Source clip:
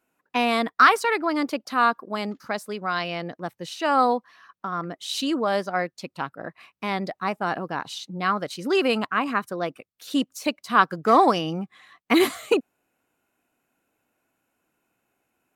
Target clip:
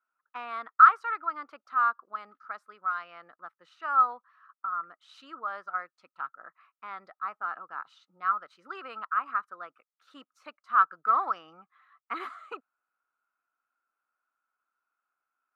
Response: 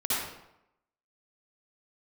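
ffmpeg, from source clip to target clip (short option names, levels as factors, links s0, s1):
-af "bandpass=f=1300:t=q:w=9.6:csg=0,volume=1.41"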